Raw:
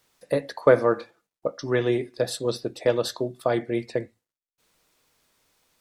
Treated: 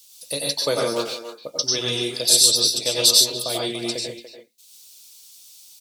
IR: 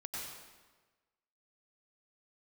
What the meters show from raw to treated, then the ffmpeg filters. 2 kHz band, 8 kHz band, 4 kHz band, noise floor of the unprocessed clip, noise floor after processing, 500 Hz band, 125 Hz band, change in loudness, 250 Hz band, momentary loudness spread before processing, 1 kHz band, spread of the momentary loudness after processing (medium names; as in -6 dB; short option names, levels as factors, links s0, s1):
-0.5 dB, +23.0 dB, +20.5 dB, under -85 dBFS, -51 dBFS, -4.0 dB, -3.5 dB, +7.0 dB, -3.0 dB, 12 LU, -2.5 dB, 15 LU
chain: -filter_complex "[0:a]asplit=2[s0][s1];[s1]adelay=290,highpass=300,lowpass=3400,asoftclip=type=hard:threshold=0.237,volume=0.316[s2];[s0][s2]amix=inputs=2:normalize=0[s3];[1:a]atrim=start_sample=2205,afade=t=out:st=0.2:d=0.01,atrim=end_sample=9261[s4];[s3][s4]afir=irnorm=-1:irlink=0,aexciter=amount=12.2:drive=7.5:freq=2800,volume=0.794"